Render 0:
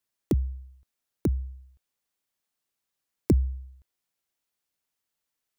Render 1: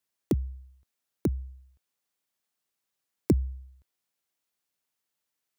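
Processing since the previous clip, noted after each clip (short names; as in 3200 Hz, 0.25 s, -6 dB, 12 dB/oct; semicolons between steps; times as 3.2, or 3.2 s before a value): HPF 90 Hz 6 dB/oct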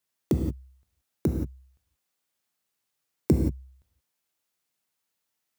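non-linear reverb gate 0.2 s flat, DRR 2.5 dB; gain +1 dB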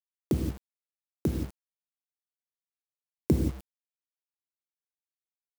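bit-crush 7-bit; gain -2.5 dB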